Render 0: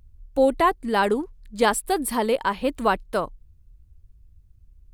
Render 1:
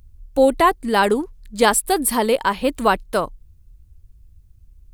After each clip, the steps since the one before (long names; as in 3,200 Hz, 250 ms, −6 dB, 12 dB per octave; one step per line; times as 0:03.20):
high-shelf EQ 4,600 Hz +6 dB
level +4 dB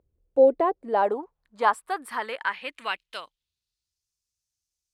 band-pass filter sweep 470 Hz → 5,800 Hz, 0:00.52–0:04.11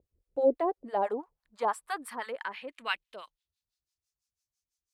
two-band tremolo in antiphase 6 Hz, depth 100%, crossover 800 Hz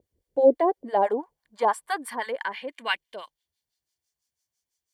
notch comb filter 1,300 Hz
level +7 dB